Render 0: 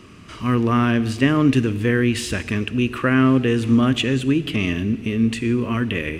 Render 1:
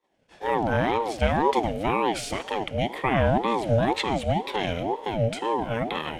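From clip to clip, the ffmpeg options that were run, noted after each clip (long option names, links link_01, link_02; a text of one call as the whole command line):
ffmpeg -i in.wav -af "agate=range=-33dB:threshold=-30dB:ratio=3:detection=peak,aeval=exprs='val(0)*sin(2*PI*520*n/s+520*0.35/2*sin(2*PI*2*n/s))':channel_layout=same,volume=-3dB" out.wav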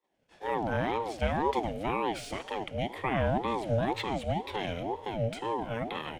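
ffmpeg -i in.wav -filter_complex "[0:a]acrossover=split=140|3700[link_01][link_02][link_03];[link_01]aecho=1:1:234:0.2[link_04];[link_03]asoftclip=type=tanh:threshold=-35.5dB[link_05];[link_04][link_02][link_05]amix=inputs=3:normalize=0,volume=-6.5dB" out.wav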